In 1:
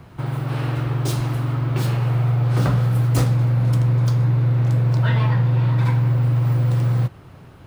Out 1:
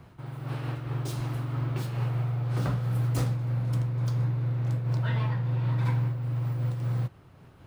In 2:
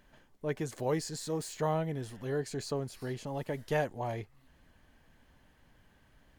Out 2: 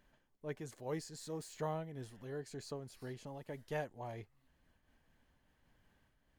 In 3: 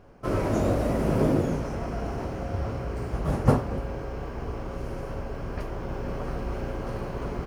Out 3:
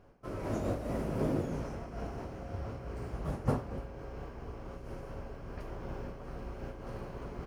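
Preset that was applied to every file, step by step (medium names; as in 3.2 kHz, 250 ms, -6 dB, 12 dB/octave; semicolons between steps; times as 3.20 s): random flutter of the level, depth 60%; trim -7 dB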